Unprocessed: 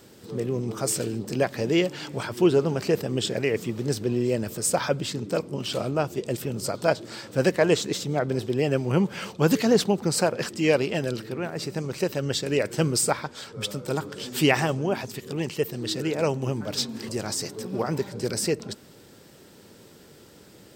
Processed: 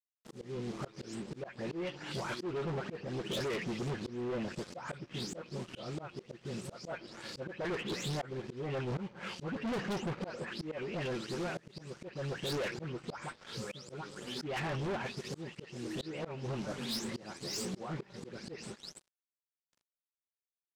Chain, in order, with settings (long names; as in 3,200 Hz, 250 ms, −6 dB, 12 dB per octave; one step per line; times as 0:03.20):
every frequency bin delayed by itself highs late, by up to 254 ms
noise gate with hold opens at −39 dBFS
noise that follows the level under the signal 11 dB
dead-zone distortion −43.5 dBFS
treble cut that deepens with the level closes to 2,500 Hz, closed at −22 dBFS
volume swells 479 ms
low-pass filter 8,400 Hz 12 dB per octave
soft clipping −35.5 dBFS, distortion −4 dB
level +2.5 dB